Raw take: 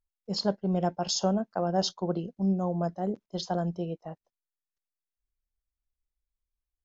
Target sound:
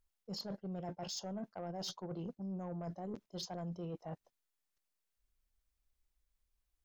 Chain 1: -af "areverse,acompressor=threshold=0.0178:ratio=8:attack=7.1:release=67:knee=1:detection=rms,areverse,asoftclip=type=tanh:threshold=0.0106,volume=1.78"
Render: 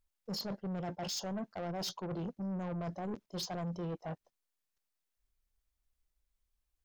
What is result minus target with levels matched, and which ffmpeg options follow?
compression: peak gain reduction -8 dB
-af "areverse,acompressor=threshold=0.00631:ratio=8:attack=7.1:release=67:knee=1:detection=rms,areverse,asoftclip=type=tanh:threshold=0.0106,volume=1.78"

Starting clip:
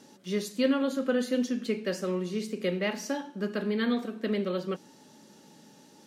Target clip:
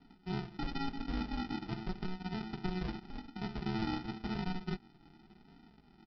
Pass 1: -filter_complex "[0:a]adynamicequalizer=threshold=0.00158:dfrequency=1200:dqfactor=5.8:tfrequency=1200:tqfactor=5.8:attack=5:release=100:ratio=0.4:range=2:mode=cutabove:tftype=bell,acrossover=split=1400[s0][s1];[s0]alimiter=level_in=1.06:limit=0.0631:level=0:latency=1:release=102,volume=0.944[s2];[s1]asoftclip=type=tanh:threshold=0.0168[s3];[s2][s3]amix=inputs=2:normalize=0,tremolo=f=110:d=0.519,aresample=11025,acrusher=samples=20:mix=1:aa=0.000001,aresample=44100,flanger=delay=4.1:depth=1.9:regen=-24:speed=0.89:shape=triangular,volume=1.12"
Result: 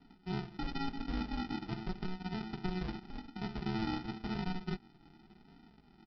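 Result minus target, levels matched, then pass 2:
saturation: distortion +15 dB
-filter_complex "[0:a]adynamicequalizer=threshold=0.00158:dfrequency=1200:dqfactor=5.8:tfrequency=1200:tqfactor=5.8:attack=5:release=100:ratio=0.4:range=2:mode=cutabove:tftype=bell,acrossover=split=1400[s0][s1];[s0]alimiter=level_in=1.06:limit=0.0631:level=0:latency=1:release=102,volume=0.944[s2];[s1]asoftclip=type=tanh:threshold=0.0631[s3];[s2][s3]amix=inputs=2:normalize=0,tremolo=f=110:d=0.519,aresample=11025,acrusher=samples=20:mix=1:aa=0.000001,aresample=44100,flanger=delay=4.1:depth=1.9:regen=-24:speed=0.89:shape=triangular,volume=1.12"

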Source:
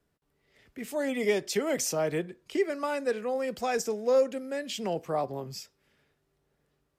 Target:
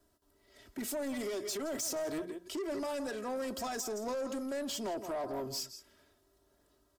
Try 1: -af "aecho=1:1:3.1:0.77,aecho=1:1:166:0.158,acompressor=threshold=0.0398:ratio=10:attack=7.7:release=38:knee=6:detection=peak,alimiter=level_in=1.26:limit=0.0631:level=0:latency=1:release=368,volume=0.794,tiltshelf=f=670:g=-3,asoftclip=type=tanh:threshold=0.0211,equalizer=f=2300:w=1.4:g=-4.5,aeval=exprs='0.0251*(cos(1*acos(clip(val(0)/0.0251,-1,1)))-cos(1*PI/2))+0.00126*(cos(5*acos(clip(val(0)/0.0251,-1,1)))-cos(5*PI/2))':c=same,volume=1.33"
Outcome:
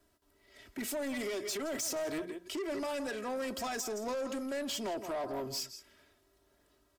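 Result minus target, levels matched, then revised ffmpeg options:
2 kHz band +3.5 dB
-af "aecho=1:1:3.1:0.77,aecho=1:1:166:0.158,acompressor=threshold=0.0398:ratio=10:attack=7.7:release=38:knee=6:detection=peak,alimiter=level_in=1.26:limit=0.0631:level=0:latency=1:release=368,volume=0.794,tiltshelf=f=670:g=-3,asoftclip=type=tanh:threshold=0.0211,equalizer=f=2300:w=1.4:g=-11,aeval=exprs='0.0251*(cos(1*acos(clip(val(0)/0.0251,-1,1)))-cos(1*PI/2))+0.00126*(cos(5*acos(clip(val(0)/0.0251,-1,1)))-cos(5*PI/2))':c=same,volume=1.33"

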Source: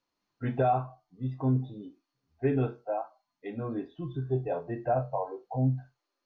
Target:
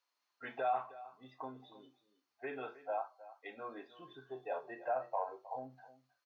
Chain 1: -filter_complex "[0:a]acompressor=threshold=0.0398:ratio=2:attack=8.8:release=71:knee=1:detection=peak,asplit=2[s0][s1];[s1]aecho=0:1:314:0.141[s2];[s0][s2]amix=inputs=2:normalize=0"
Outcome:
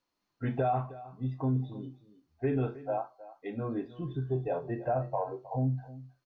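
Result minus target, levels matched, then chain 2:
1 kHz band -5.0 dB
-filter_complex "[0:a]acompressor=threshold=0.0398:ratio=2:attack=8.8:release=71:knee=1:detection=peak,highpass=810,asplit=2[s0][s1];[s1]aecho=0:1:314:0.141[s2];[s0][s2]amix=inputs=2:normalize=0"

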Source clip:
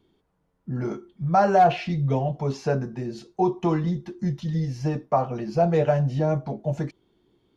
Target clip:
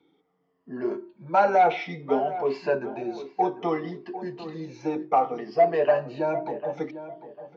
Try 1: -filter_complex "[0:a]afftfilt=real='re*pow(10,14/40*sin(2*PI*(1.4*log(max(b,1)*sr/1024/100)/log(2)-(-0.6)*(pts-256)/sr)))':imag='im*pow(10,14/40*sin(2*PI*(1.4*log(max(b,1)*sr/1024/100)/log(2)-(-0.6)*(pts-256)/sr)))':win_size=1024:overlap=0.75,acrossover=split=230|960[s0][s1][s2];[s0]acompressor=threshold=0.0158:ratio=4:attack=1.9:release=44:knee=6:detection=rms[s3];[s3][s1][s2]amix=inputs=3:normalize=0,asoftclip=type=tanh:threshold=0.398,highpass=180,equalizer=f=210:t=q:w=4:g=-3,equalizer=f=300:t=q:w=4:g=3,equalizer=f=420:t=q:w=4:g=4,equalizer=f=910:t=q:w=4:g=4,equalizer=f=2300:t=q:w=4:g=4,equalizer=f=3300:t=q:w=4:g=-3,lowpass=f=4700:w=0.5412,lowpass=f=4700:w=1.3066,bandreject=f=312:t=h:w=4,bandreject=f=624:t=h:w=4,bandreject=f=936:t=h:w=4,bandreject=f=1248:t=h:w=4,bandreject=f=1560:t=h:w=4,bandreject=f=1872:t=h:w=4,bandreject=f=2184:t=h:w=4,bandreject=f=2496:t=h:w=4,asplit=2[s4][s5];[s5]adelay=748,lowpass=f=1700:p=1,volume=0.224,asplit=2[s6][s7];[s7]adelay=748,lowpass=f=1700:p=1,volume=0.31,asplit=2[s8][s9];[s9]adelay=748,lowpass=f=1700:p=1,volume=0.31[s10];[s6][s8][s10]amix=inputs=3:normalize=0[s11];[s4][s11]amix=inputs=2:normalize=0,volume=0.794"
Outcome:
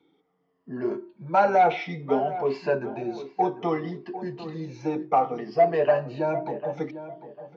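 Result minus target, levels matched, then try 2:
compression: peak gain reduction -9 dB
-filter_complex "[0:a]afftfilt=real='re*pow(10,14/40*sin(2*PI*(1.4*log(max(b,1)*sr/1024/100)/log(2)-(-0.6)*(pts-256)/sr)))':imag='im*pow(10,14/40*sin(2*PI*(1.4*log(max(b,1)*sr/1024/100)/log(2)-(-0.6)*(pts-256)/sr)))':win_size=1024:overlap=0.75,acrossover=split=230|960[s0][s1][s2];[s0]acompressor=threshold=0.00398:ratio=4:attack=1.9:release=44:knee=6:detection=rms[s3];[s3][s1][s2]amix=inputs=3:normalize=0,asoftclip=type=tanh:threshold=0.398,highpass=180,equalizer=f=210:t=q:w=4:g=-3,equalizer=f=300:t=q:w=4:g=3,equalizer=f=420:t=q:w=4:g=4,equalizer=f=910:t=q:w=4:g=4,equalizer=f=2300:t=q:w=4:g=4,equalizer=f=3300:t=q:w=4:g=-3,lowpass=f=4700:w=0.5412,lowpass=f=4700:w=1.3066,bandreject=f=312:t=h:w=4,bandreject=f=624:t=h:w=4,bandreject=f=936:t=h:w=4,bandreject=f=1248:t=h:w=4,bandreject=f=1560:t=h:w=4,bandreject=f=1872:t=h:w=4,bandreject=f=2184:t=h:w=4,bandreject=f=2496:t=h:w=4,asplit=2[s4][s5];[s5]adelay=748,lowpass=f=1700:p=1,volume=0.224,asplit=2[s6][s7];[s7]adelay=748,lowpass=f=1700:p=1,volume=0.31,asplit=2[s8][s9];[s9]adelay=748,lowpass=f=1700:p=1,volume=0.31[s10];[s6][s8][s10]amix=inputs=3:normalize=0[s11];[s4][s11]amix=inputs=2:normalize=0,volume=0.794"

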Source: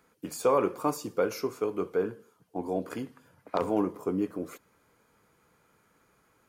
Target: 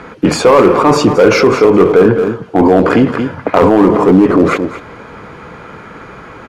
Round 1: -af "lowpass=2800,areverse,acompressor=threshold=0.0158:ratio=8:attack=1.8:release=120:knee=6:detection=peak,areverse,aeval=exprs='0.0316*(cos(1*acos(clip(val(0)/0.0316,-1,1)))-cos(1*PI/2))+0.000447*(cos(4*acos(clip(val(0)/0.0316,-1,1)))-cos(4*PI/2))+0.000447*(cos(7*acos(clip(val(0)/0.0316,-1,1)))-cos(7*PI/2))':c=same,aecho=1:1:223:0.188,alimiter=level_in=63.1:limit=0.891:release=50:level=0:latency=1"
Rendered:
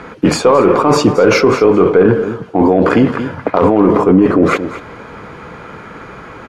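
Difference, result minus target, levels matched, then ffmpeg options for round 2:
compression: peak gain reduction +6 dB
-af "lowpass=2800,areverse,acompressor=threshold=0.0355:ratio=8:attack=1.8:release=120:knee=6:detection=peak,areverse,aeval=exprs='0.0316*(cos(1*acos(clip(val(0)/0.0316,-1,1)))-cos(1*PI/2))+0.000447*(cos(4*acos(clip(val(0)/0.0316,-1,1)))-cos(4*PI/2))+0.000447*(cos(7*acos(clip(val(0)/0.0316,-1,1)))-cos(7*PI/2))':c=same,aecho=1:1:223:0.188,alimiter=level_in=63.1:limit=0.891:release=50:level=0:latency=1"

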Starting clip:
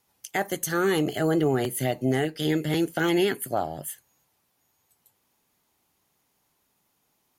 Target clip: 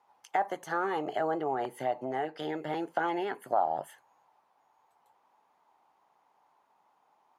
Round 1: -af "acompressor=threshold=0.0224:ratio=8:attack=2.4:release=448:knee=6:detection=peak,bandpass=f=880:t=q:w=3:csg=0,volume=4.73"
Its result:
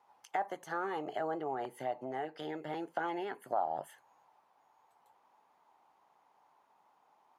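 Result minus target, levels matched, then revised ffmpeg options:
compression: peak gain reduction +5.5 dB
-af "acompressor=threshold=0.0473:ratio=8:attack=2.4:release=448:knee=6:detection=peak,bandpass=f=880:t=q:w=3:csg=0,volume=4.73"

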